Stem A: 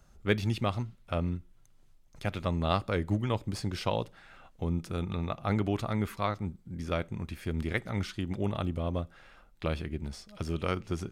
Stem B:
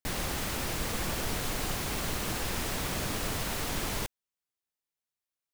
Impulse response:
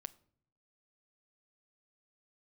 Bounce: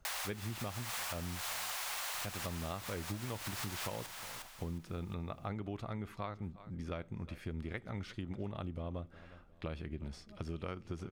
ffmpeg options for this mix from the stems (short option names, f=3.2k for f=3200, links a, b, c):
-filter_complex "[0:a]highshelf=f=5.6k:g=-8.5,volume=-4dB,asplit=3[a][b][c];[b]volume=-22dB[d];[1:a]highpass=f=730:w=0.5412,highpass=f=730:w=1.3066,volume=2dB,asplit=3[e][f][g];[f]volume=-16.5dB[h];[g]volume=-13dB[i];[c]apad=whole_len=244133[j];[e][j]sidechaincompress=threshold=-43dB:ratio=8:attack=26:release=195[k];[2:a]atrim=start_sample=2205[l];[h][l]afir=irnorm=-1:irlink=0[m];[d][i]amix=inputs=2:normalize=0,aecho=0:1:359|718|1077|1436|1795:1|0.36|0.13|0.0467|0.0168[n];[a][k][m][n]amix=inputs=4:normalize=0,acompressor=threshold=-37dB:ratio=6"